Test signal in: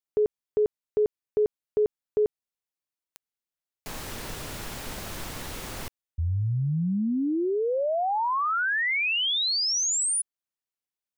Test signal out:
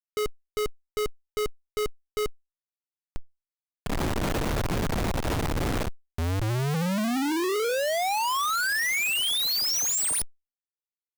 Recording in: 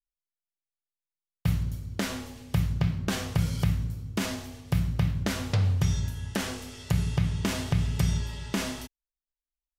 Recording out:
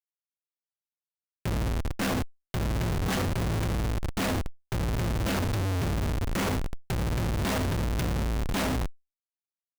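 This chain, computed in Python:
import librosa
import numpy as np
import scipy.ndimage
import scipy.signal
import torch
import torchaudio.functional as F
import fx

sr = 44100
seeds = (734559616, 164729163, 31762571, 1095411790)

y = fx.hum_notches(x, sr, base_hz=50, count=9)
y = fx.schmitt(y, sr, flips_db=-33.0)
y = fx.power_curve(y, sr, exponent=0.5)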